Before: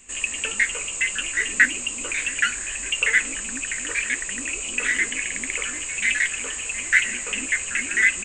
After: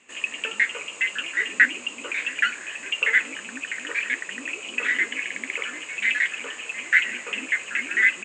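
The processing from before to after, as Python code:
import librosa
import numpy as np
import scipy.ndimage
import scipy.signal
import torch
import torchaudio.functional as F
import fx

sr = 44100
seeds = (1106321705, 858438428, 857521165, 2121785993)

y = fx.bandpass_edges(x, sr, low_hz=260.0, high_hz=3500.0)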